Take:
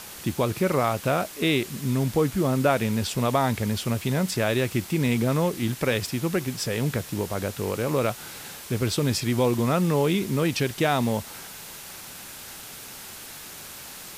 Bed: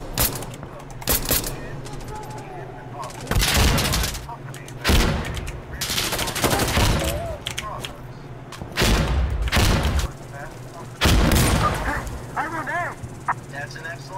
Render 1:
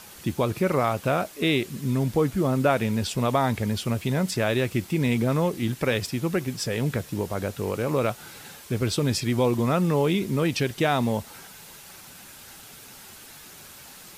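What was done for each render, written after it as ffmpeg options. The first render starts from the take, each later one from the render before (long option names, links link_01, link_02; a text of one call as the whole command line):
ffmpeg -i in.wav -af "afftdn=noise_reduction=6:noise_floor=-41" out.wav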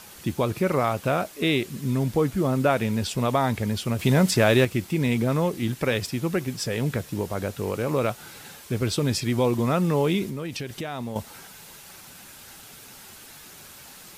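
ffmpeg -i in.wav -filter_complex "[0:a]asettb=1/sr,asplit=3[link_01][link_02][link_03];[link_01]atrim=end=3.994[link_04];[link_02]atrim=start=3.99:end=4.65,asetpts=PTS-STARTPTS,afade=type=in:duration=0.004:curve=qsin,afade=type=out:start_time=0.656:duration=0.004:curve=qsin,acontrast=45[link_05];[link_03]atrim=start=4.646[link_06];[link_04][link_05]acrossfade=duration=0.004:curve1=hsin:curve2=qsin[link_07];[link_07][link_06]acrossfade=duration=0.004:curve1=qsin:curve2=hsin,asettb=1/sr,asplit=3[link_08][link_09][link_10];[link_08]atrim=end=10.284[link_11];[link_09]atrim=start=10.28:end=11.16,asetpts=PTS-STARTPTS,afade=type=in:duration=0.004:curve=qsin,afade=type=out:start_time=0.876:duration=0.004:curve=qsin,acompressor=threshold=-29dB:ratio=5:attack=3.2:release=140:knee=1:detection=peak[link_12];[link_10]atrim=start=11.156[link_13];[link_11][link_12]acrossfade=duration=0.004:curve1=hsin:curve2=qsin[link_14];[link_14][link_13]acrossfade=duration=0.004:curve1=qsin:curve2=hsin" out.wav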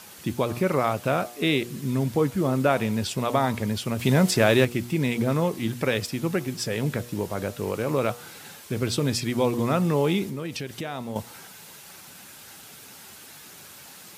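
ffmpeg -i in.wav -af "highpass=90,bandreject=frequency=120.1:width_type=h:width=4,bandreject=frequency=240.2:width_type=h:width=4,bandreject=frequency=360.3:width_type=h:width=4,bandreject=frequency=480.4:width_type=h:width=4,bandreject=frequency=600.5:width_type=h:width=4,bandreject=frequency=720.6:width_type=h:width=4,bandreject=frequency=840.7:width_type=h:width=4,bandreject=frequency=960.8:width_type=h:width=4,bandreject=frequency=1080.9:width_type=h:width=4,bandreject=frequency=1201:width_type=h:width=4,bandreject=frequency=1321.1:width_type=h:width=4" out.wav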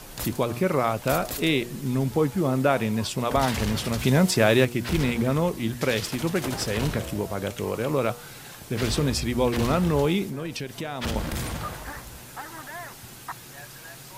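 ffmpeg -i in.wav -i bed.wav -filter_complex "[1:a]volume=-13dB[link_01];[0:a][link_01]amix=inputs=2:normalize=0" out.wav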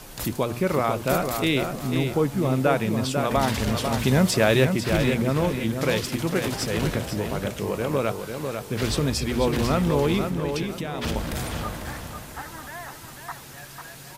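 ffmpeg -i in.wav -filter_complex "[0:a]asplit=2[link_01][link_02];[link_02]adelay=496,lowpass=frequency=4800:poles=1,volume=-6dB,asplit=2[link_03][link_04];[link_04]adelay=496,lowpass=frequency=4800:poles=1,volume=0.31,asplit=2[link_05][link_06];[link_06]adelay=496,lowpass=frequency=4800:poles=1,volume=0.31,asplit=2[link_07][link_08];[link_08]adelay=496,lowpass=frequency=4800:poles=1,volume=0.31[link_09];[link_01][link_03][link_05][link_07][link_09]amix=inputs=5:normalize=0" out.wav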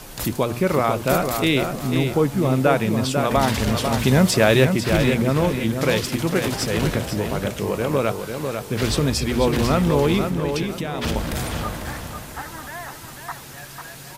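ffmpeg -i in.wav -af "volume=3.5dB" out.wav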